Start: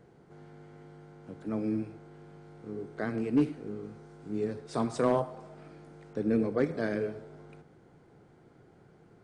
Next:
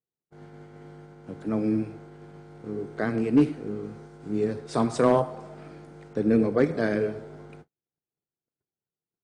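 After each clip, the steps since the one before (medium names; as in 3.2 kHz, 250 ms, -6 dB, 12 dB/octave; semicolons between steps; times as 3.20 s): gate -51 dBFS, range -46 dB; trim +6 dB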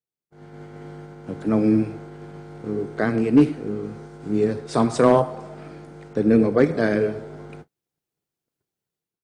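level rider gain up to 11.5 dB; trim -4 dB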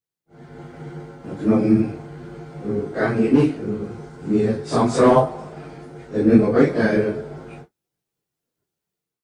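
phase randomisation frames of 100 ms; trim +2.5 dB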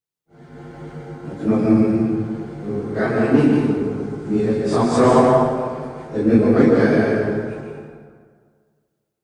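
reverberation RT60 1.8 s, pre-delay 113 ms, DRR -0.5 dB; trim -1 dB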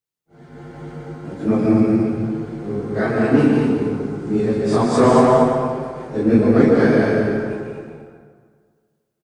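delay 228 ms -7 dB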